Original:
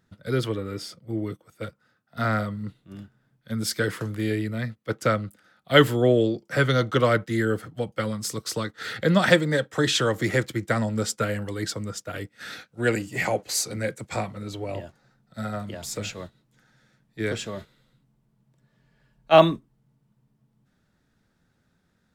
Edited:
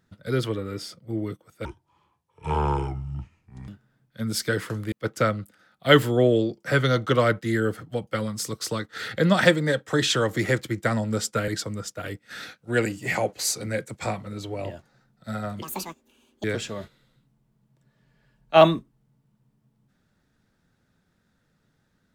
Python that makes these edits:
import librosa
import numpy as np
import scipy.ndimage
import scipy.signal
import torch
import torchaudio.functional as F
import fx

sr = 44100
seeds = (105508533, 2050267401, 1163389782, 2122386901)

y = fx.edit(x, sr, fx.speed_span(start_s=1.65, length_s=1.34, speed=0.66),
    fx.cut(start_s=4.23, length_s=0.54),
    fx.cut(start_s=11.33, length_s=0.25),
    fx.speed_span(start_s=15.72, length_s=1.49, speed=1.82), tone=tone)